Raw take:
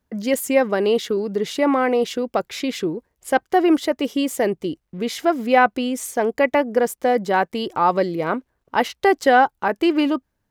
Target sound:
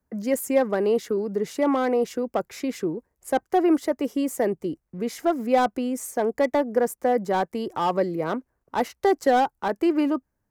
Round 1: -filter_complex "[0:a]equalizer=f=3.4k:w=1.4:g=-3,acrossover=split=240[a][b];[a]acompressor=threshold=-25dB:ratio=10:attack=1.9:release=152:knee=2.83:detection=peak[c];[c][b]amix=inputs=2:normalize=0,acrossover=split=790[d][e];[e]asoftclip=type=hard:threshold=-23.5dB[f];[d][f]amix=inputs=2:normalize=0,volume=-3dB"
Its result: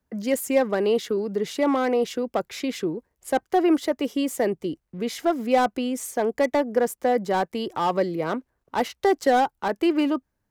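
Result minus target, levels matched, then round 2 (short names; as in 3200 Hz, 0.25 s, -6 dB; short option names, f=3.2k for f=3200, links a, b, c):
4000 Hz band +4.5 dB
-filter_complex "[0:a]equalizer=f=3.4k:w=1.4:g=-12.5,acrossover=split=240[a][b];[a]acompressor=threshold=-25dB:ratio=10:attack=1.9:release=152:knee=2.83:detection=peak[c];[c][b]amix=inputs=2:normalize=0,acrossover=split=790[d][e];[e]asoftclip=type=hard:threshold=-23.5dB[f];[d][f]amix=inputs=2:normalize=0,volume=-3dB"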